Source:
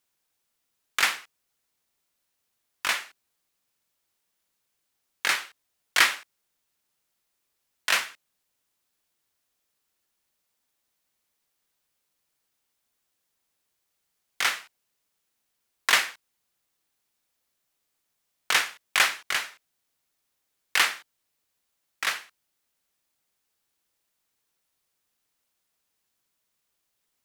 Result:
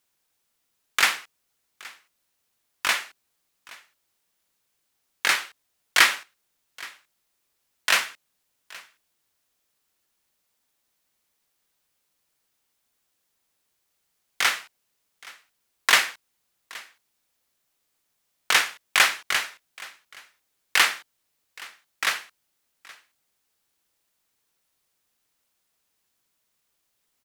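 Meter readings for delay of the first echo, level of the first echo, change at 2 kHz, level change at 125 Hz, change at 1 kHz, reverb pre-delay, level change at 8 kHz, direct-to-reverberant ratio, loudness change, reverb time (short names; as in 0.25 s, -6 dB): 0.822 s, -22.0 dB, +3.0 dB, n/a, +3.0 dB, none, +3.0 dB, none, +3.0 dB, none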